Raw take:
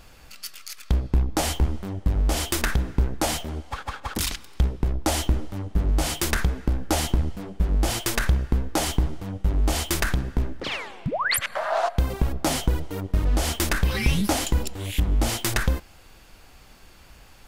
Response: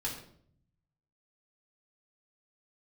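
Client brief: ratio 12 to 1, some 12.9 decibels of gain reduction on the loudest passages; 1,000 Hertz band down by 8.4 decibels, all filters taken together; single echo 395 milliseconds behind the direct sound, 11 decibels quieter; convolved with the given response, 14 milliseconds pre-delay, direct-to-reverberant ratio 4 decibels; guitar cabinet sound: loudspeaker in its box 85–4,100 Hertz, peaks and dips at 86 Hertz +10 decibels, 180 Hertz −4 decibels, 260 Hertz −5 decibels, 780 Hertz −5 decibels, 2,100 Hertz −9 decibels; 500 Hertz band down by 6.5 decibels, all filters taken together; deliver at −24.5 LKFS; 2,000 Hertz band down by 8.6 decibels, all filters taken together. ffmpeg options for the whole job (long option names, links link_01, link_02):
-filter_complex "[0:a]equalizer=frequency=500:width_type=o:gain=-5.5,equalizer=frequency=1000:width_type=o:gain=-4.5,equalizer=frequency=2000:width_type=o:gain=-5.5,acompressor=threshold=-30dB:ratio=12,aecho=1:1:395:0.282,asplit=2[link_01][link_02];[1:a]atrim=start_sample=2205,adelay=14[link_03];[link_02][link_03]afir=irnorm=-1:irlink=0,volume=-6.5dB[link_04];[link_01][link_04]amix=inputs=2:normalize=0,highpass=85,equalizer=frequency=86:width_type=q:width=4:gain=10,equalizer=frequency=180:width_type=q:width=4:gain=-4,equalizer=frequency=260:width_type=q:width=4:gain=-5,equalizer=frequency=780:width_type=q:width=4:gain=-5,equalizer=frequency=2100:width_type=q:width=4:gain=-9,lowpass=frequency=4100:width=0.5412,lowpass=frequency=4100:width=1.3066,volume=12dB"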